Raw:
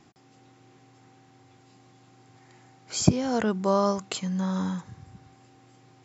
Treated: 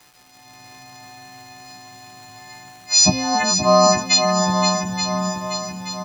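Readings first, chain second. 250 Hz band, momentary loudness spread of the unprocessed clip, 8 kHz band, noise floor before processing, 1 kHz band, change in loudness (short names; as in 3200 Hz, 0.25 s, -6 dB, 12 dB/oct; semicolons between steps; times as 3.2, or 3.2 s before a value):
+4.5 dB, 9 LU, n/a, -58 dBFS, +13.0 dB, +9.5 dB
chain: frequency quantiser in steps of 3 st; low shelf 400 Hz -7 dB; notches 60/120 Hz; AGC gain up to 12 dB; fixed phaser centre 2100 Hz, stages 8; crackle 590/s -43 dBFS; doubler 16 ms -7 dB; on a send: swung echo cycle 0.878 s, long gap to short 1.5:1, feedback 49%, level -6.5 dB; on the sum: gain +3.5 dB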